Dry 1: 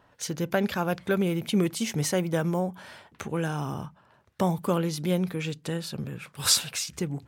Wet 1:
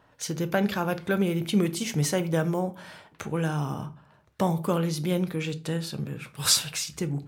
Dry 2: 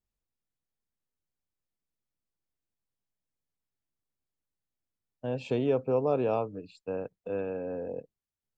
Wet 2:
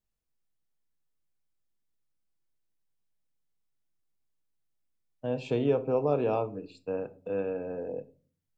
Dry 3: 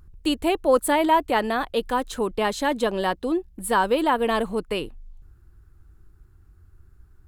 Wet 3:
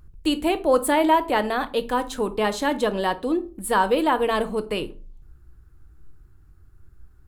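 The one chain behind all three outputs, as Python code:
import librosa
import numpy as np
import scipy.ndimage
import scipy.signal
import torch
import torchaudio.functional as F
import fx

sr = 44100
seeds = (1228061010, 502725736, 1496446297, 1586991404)

y = fx.room_shoebox(x, sr, seeds[0], volume_m3=250.0, walls='furnished', distance_m=0.53)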